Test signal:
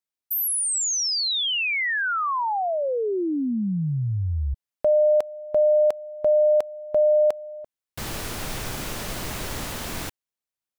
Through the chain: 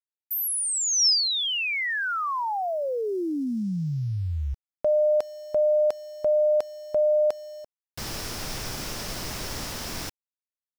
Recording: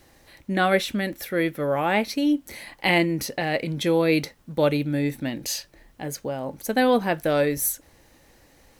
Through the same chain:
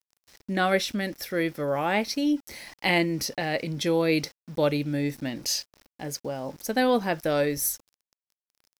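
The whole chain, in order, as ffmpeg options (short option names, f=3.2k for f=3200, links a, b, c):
-af "aeval=exprs='val(0)*gte(abs(val(0)),0.00562)':c=same,equalizer=f=5.3k:t=o:w=0.4:g=9,aeval=exprs='0.501*(cos(1*acos(clip(val(0)/0.501,-1,1)))-cos(1*PI/2))+0.00316*(cos(2*acos(clip(val(0)/0.501,-1,1)))-cos(2*PI/2))':c=same,volume=-3dB"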